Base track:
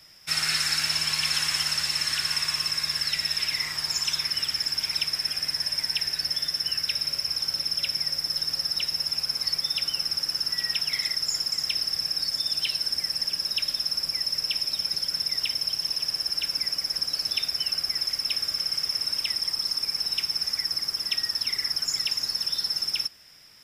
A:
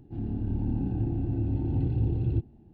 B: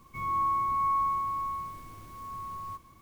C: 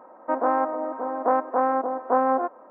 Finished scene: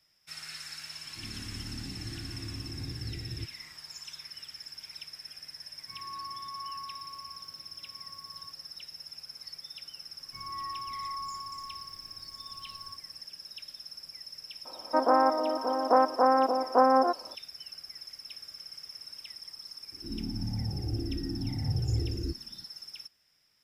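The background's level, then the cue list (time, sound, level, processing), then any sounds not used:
base track −17.5 dB
0:01.05: mix in A −12.5 dB
0:05.74: mix in B −14 dB + high-pass filter 97 Hz
0:10.19: mix in B −11 dB
0:14.65: mix in C −0.5 dB
0:19.92: mix in A −1.5 dB + frequency shifter mixed with the dry sound −0.92 Hz

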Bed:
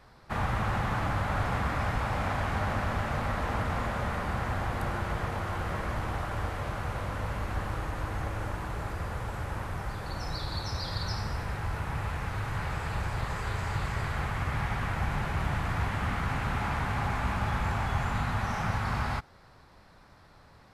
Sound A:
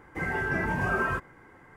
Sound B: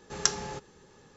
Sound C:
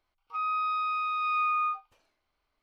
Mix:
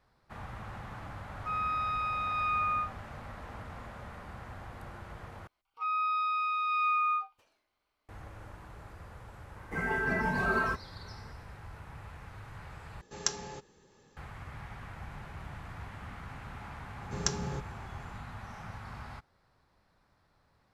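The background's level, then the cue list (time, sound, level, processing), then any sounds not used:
bed −14 dB
0:01.12: mix in C −3 dB
0:05.47: overwrite with C −1 dB + low-shelf EQ 62 Hz −11 dB
0:09.56: mix in A −3.5 dB + comb filter 4.6 ms, depth 52%
0:13.01: overwrite with B −5.5 dB + parametric band 1,400 Hz −3 dB 0.25 octaves
0:17.01: mix in B −6.5 dB + parametric band 120 Hz +15 dB 2.6 octaves

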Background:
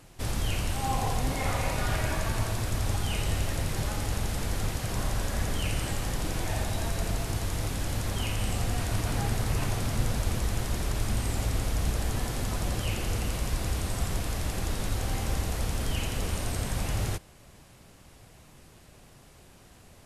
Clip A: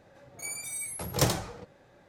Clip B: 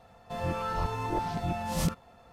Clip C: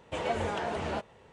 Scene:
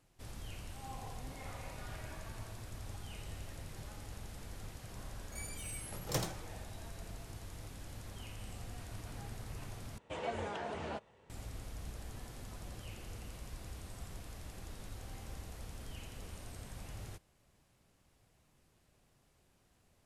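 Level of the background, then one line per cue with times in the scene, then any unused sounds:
background −17.5 dB
0:04.93: mix in A −10.5 dB + high-pass filter 63 Hz
0:09.98: overwrite with C −8 dB
not used: B

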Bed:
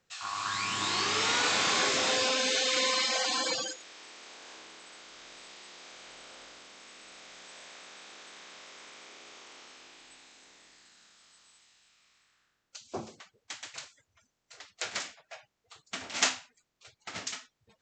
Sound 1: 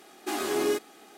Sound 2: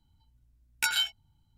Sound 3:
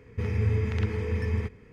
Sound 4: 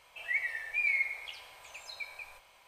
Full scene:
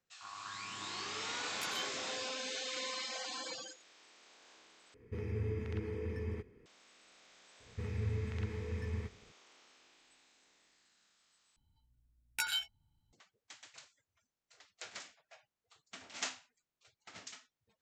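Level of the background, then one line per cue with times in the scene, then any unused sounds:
bed −12.5 dB
0:00.79: mix in 2 −16.5 dB
0:04.94: overwrite with 3 −13 dB + parametric band 350 Hz +11 dB 0.71 octaves
0:07.60: mix in 3 −11 dB
0:11.56: overwrite with 2 −8 dB
not used: 1, 4

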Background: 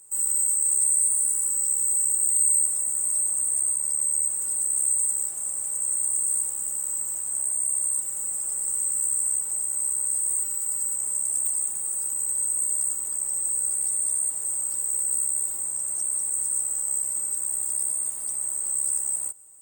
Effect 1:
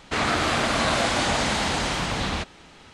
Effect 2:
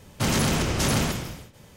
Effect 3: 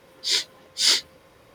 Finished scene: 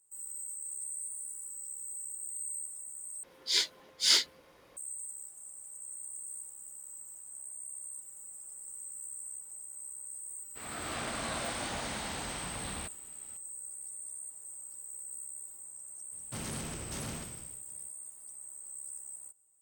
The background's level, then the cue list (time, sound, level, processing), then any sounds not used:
background −18.5 dB
0:03.23: overwrite with 3 −5.5 dB + parametric band 100 Hz −8 dB 1.2 octaves
0:10.44: mix in 1 −14.5 dB + fade in at the beginning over 0.53 s
0:16.12: mix in 2 −17.5 dB

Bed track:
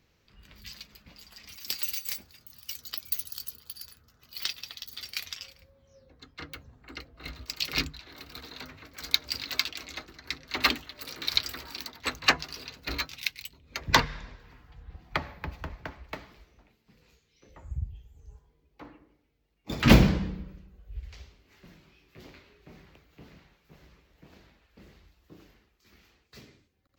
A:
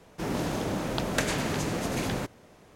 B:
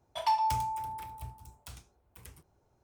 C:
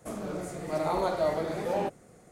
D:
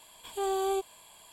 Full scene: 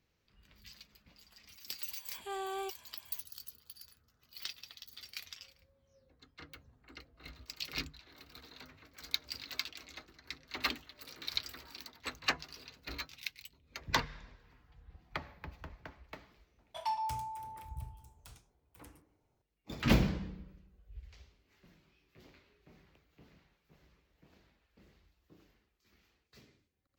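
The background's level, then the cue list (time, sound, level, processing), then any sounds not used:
bed track −10 dB
0:01.89: mix in D −13 dB + parametric band 1,900 Hz +13 dB 2 octaves
0:16.59: mix in B −7.5 dB
not used: A, C

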